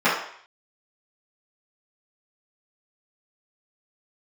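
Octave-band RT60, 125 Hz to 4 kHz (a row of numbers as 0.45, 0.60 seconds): 0.35, 0.45, 0.55, 0.60, 0.65, 0.60 seconds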